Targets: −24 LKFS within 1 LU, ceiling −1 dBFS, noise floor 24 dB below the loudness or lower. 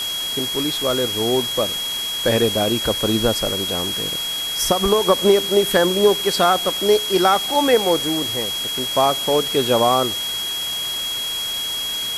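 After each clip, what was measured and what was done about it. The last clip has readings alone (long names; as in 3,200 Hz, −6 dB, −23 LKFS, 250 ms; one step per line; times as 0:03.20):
interfering tone 3,300 Hz; level of the tone −23 dBFS; background noise floor −25 dBFS; target noise floor −43 dBFS; integrated loudness −18.5 LKFS; sample peak −2.0 dBFS; target loudness −24.0 LKFS
→ notch filter 3,300 Hz, Q 30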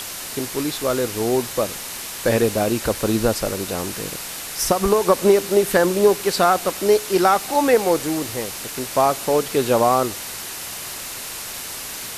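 interfering tone none found; background noise floor −32 dBFS; target noise floor −45 dBFS
→ noise reduction from a noise print 13 dB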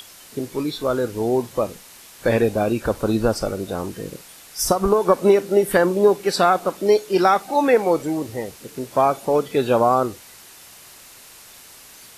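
background noise floor −45 dBFS; integrated loudness −20.0 LKFS; sample peak −2.5 dBFS; target loudness −24.0 LKFS
→ level −4 dB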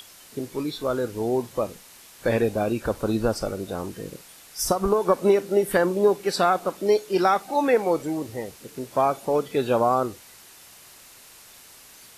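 integrated loudness −24.0 LKFS; sample peak −6.5 dBFS; background noise floor −49 dBFS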